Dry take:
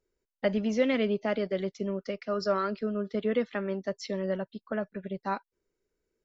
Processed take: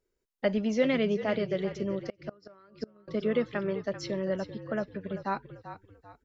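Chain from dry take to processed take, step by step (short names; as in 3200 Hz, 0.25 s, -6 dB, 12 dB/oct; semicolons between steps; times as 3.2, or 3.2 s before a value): frequency-shifting echo 0.39 s, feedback 37%, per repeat -46 Hz, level -12 dB; 2.08–3.08 flipped gate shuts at -22 dBFS, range -28 dB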